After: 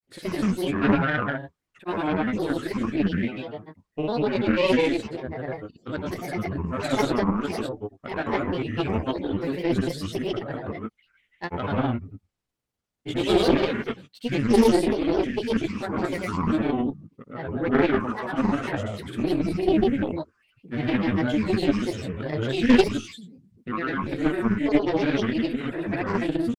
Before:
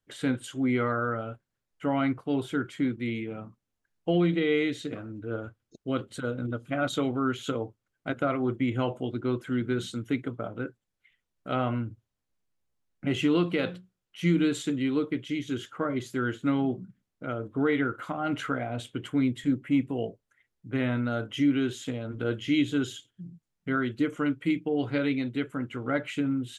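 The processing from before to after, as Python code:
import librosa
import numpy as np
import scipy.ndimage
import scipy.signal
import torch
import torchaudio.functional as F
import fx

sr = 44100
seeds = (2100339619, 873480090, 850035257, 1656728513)

y = fx.rev_gated(x, sr, seeds[0], gate_ms=220, shape='rising', drr_db=-3.5)
y = fx.cheby_harmonics(y, sr, harmonics=(4, 6, 7), levels_db=(-11, -23, -34), full_scale_db=-7.5)
y = fx.granulator(y, sr, seeds[1], grain_ms=100.0, per_s=20.0, spray_ms=100.0, spread_st=7)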